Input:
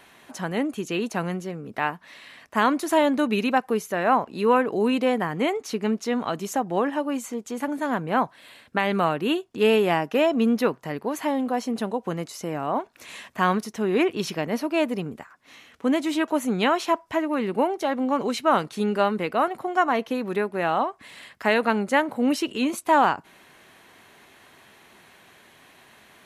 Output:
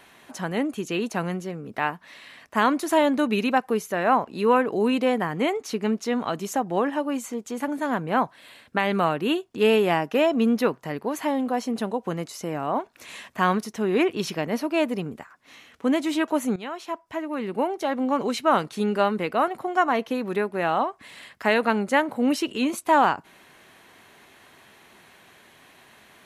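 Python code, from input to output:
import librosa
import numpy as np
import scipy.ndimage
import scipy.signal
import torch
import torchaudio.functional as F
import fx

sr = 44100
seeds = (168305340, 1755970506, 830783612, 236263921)

y = fx.edit(x, sr, fx.fade_in_from(start_s=16.56, length_s=1.48, floor_db=-16.0), tone=tone)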